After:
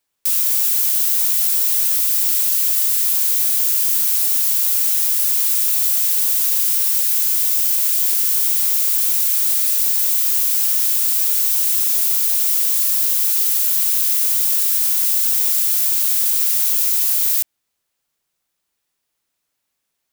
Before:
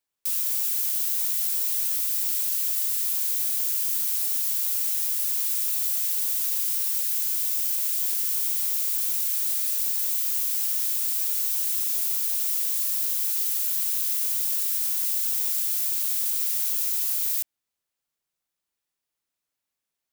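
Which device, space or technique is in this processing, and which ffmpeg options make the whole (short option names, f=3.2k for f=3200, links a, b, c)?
parallel distortion: -filter_complex "[0:a]asplit=2[a][b];[b]asoftclip=type=hard:threshold=-25dB,volume=-8dB[c];[a][c]amix=inputs=2:normalize=0,volume=6.5dB"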